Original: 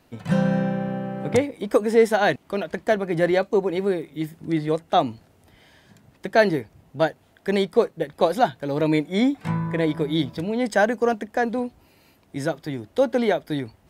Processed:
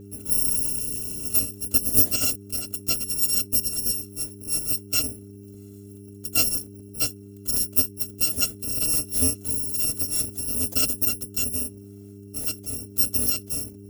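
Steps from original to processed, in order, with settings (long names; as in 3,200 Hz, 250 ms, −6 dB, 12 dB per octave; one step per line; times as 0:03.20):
samples in bit-reversed order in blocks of 256 samples
graphic EQ with 10 bands 125 Hz +6 dB, 250 Hz +11 dB, 500 Hz +9 dB, 1,000 Hz −8 dB, 2,000 Hz −7 dB, 4,000 Hz −8 dB
hum with harmonics 100 Hz, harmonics 4, −41 dBFS −2 dB per octave
level −2 dB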